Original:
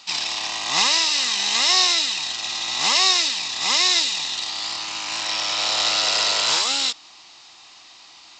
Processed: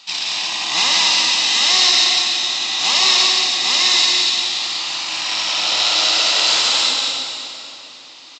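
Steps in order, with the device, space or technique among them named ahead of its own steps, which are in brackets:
stadium PA (high-pass filter 120 Hz 12 dB per octave; parametric band 3,400 Hz +4.5 dB 1.2 octaves; loudspeakers that aren't time-aligned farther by 61 metres −5 dB, 80 metres −11 dB, 98 metres −11 dB; convolution reverb RT60 3.2 s, pre-delay 14 ms, DRR 1 dB)
level −2 dB

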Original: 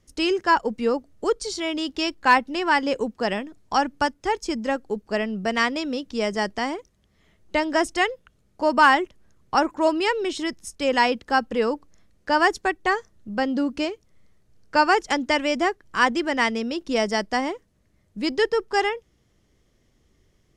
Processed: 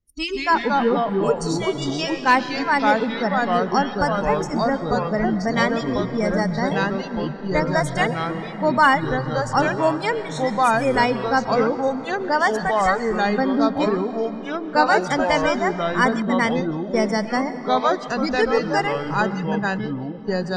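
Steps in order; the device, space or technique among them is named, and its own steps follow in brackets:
noise reduction from a noise print of the clip's start 24 dB
compressed reverb return (on a send at −7 dB: convolution reverb RT60 3.0 s, pre-delay 105 ms + downward compressor 5 to 1, threshold −26 dBFS, peak gain reduction 11.5 dB)
0:16.22–0:16.94: on the sum: noise gate −23 dBFS, range −20 dB
low-shelf EQ 180 Hz +11.5 dB
delay with pitch and tempo change per echo 139 ms, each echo −3 semitones, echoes 3

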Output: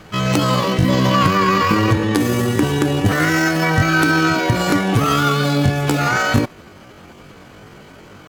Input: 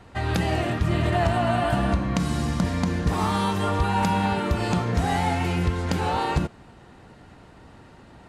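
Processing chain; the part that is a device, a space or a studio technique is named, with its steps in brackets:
chipmunk voice (pitch shifter +8.5 semitones)
level +7.5 dB

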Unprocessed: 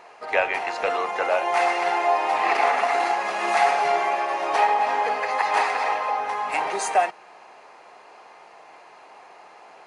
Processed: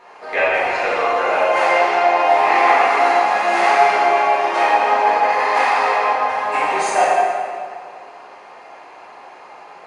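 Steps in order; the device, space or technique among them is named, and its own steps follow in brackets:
0:01.66–0:02.17: low-pass filter 6,900 Hz
swimming-pool hall (convolution reverb RT60 2.0 s, pre-delay 4 ms, DRR −9 dB; high-shelf EQ 5,400 Hz −5 dB)
level −2 dB

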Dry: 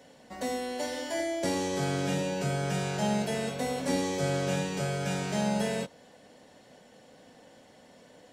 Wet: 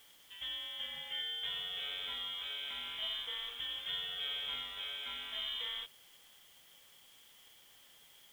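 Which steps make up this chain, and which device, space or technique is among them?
scrambled radio voice (band-pass filter 390–3,100 Hz; voice inversion scrambler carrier 3,800 Hz; white noise bed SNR 21 dB)
level −7 dB

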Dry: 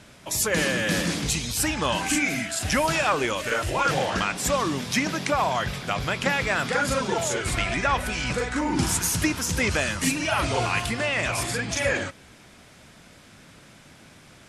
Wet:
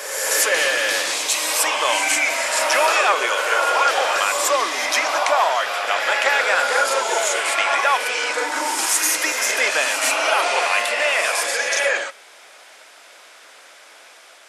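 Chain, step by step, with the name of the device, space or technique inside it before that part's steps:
ghost voice (reversed playback; convolution reverb RT60 2.1 s, pre-delay 91 ms, DRR 2 dB; reversed playback; high-pass filter 510 Hz 24 dB per octave)
level +5.5 dB

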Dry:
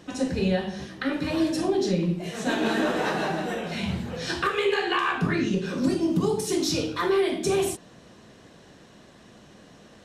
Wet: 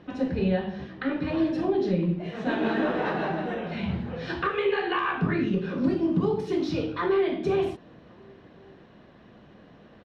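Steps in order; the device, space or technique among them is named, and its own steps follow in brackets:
shout across a valley (high-frequency loss of the air 330 metres; slap from a distant wall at 190 metres, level −30 dB)

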